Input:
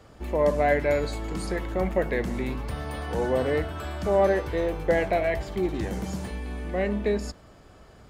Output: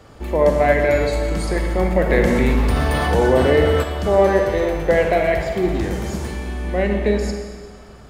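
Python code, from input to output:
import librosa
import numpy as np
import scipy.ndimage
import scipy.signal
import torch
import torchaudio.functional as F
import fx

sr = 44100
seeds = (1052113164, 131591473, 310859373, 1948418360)

y = fx.rev_schroeder(x, sr, rt60_s=1.6, comb_ms=38, drr_db=3.5)
y = fx.env_flatten(y, sr, amount_pct=50, at=(2.09, 3.82), fade=0.02)
y = F.gain(torch.from_numpy(y), 6.0).numpy()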